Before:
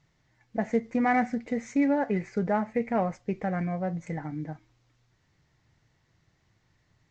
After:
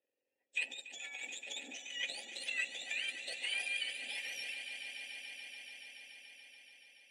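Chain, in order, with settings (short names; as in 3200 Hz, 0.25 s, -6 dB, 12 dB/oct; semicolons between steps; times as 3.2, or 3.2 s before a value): spectrum mirrored in octaves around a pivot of 1300 Hz; resonant high shelf 2000 Hz +7 dB, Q 1.5; negative-ratio compressor -29 dBFS, ratio -1; power-law curve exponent 1.4; vowel filter e; on a send: swelling echo 0.143 s, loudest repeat 5, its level -13.5 dB; on the sum: gain +10.5 dB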